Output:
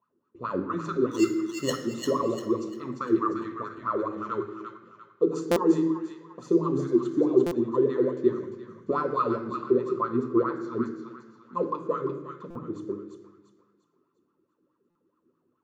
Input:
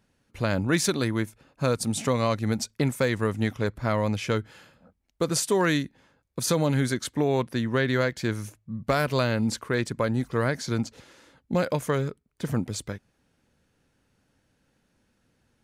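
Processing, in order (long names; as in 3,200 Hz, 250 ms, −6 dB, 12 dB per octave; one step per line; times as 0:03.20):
LFO wah 4.7 Hz 330–1,300 Hz, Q 12
0:01.11–0:01.73: sample-rate reduction 2,400 Hz, jitter 0%
delay with a high-pass on its return 347 ms, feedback 38%, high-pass 1,500 Hz, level −3.5 dB
convolution reverb RT60 1.1 s, pre-delay 3 ms, DRR 6 dB
dynamic equaliser 7,400 Hz, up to +4 dB, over −58 dBFS, Q 0.73
buffer that repeats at 0:05.51/0:07.46/0:12.50/0:14.90, samples 256, times 8
level +6 dB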